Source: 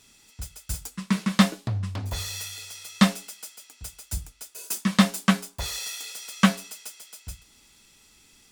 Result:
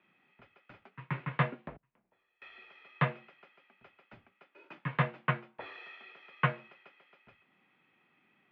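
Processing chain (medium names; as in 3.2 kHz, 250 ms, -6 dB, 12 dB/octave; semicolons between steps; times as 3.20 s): 1.76–2.42 s: inverted gate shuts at -26 dBFS, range -29 dB; mistuned SSB -59 Hz 240–2600 Hz; trim -5.5 dB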